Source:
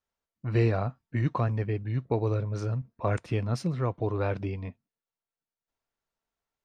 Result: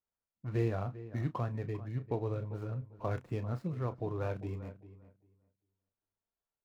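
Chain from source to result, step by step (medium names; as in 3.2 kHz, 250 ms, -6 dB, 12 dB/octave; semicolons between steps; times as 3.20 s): median filter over 15 samples; peaking EQ 5 kHz -4 dB 0.62 oct; doubling 32 ms -12 dB; filtered feedback delay 396 ms, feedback 17%, low-pass 2.2 kHz, level -15 dB; trim -7.5 dB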